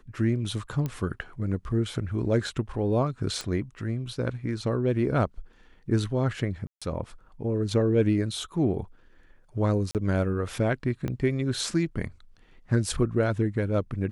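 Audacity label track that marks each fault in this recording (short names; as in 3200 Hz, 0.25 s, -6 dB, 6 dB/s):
0.860000	0.860000	pop -18 dBFS
3.410000	3.410000	pop -18 dBFS
6.670000	6.820000	gap 0.146 s
9.910000	9.950000	gap 38 ms
11.080000	11.080000	pop -19 dBFS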